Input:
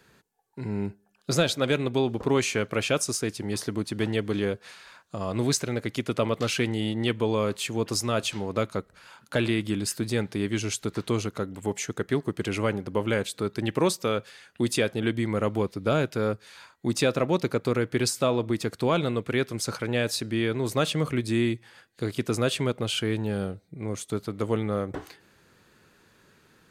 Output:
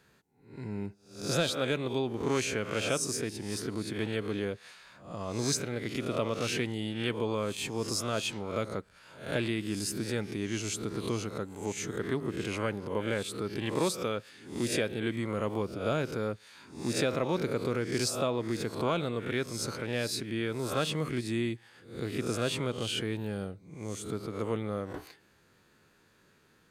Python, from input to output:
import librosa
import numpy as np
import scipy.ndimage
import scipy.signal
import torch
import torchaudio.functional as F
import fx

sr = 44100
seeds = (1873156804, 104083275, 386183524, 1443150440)

y = fx.spec_swells(x, sr, rise_s=0.48)
y = F.gain(torch.from_numpy(y), -7.0).numpy()